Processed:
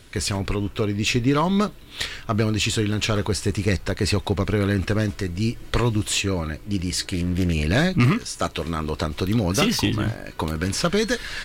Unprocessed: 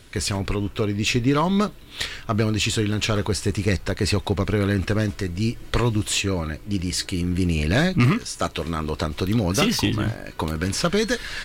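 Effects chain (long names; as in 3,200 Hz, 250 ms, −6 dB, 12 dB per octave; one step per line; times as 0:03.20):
0:07.00–0:07.54: highs frequency-modulated by the lows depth 0.37 ms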